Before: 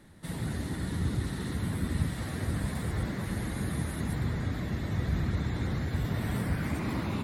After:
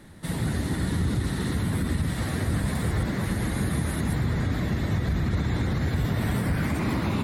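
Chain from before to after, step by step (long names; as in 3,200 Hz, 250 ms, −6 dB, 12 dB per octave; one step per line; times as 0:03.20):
brickwall limiter −24 dBFS, peak gain reduction 7.5 dB
level +7 dB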